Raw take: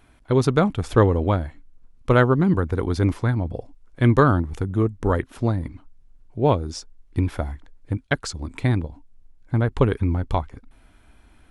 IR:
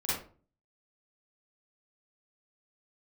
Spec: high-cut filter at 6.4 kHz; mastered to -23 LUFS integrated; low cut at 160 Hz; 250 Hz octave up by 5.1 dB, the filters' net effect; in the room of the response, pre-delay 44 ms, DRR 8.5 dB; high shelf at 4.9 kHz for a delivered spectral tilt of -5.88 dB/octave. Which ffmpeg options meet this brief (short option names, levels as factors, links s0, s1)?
-filter_complex "[0:a]highpass=160,lowpass=6400,equalizer=f=250:t=o:g=7.5,highshelf=f=4900:g=-8,asplit=2[s0][s1];[1:a]atrim=start_sample=2205,adelay=44[s2];[s1][s2]afir=irnorm=-1:irlink=0,volume=0.178[s3];[s0][s3]amix=inputs=2:normalize=0,volume=0.708"